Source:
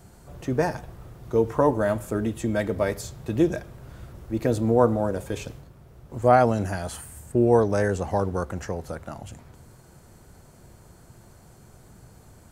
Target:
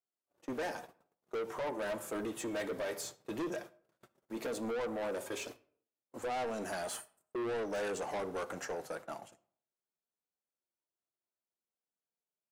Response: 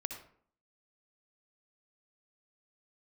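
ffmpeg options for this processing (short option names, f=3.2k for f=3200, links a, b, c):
-filter_complex "[0:a]agate=range=-44dB:threshold=-37dB:ratio=16:detection=peak,highpass=360,alimiter=limit=-16.5dB:level=0:latency=1:release=286,flanger=delay=2.8:depth=4.4:regen=-49:speed=0.18:shape=triangular,asoftclip=type=tanh:threshold=-36dB,asplit=2[a][b];[1:a]atrim=start_sample=2205[c];[b][c]afir=irnorm=-1:irlink=0,volume=-13dB[d];[a][d]amix=inputs=2:normalize=0,volume=1dB"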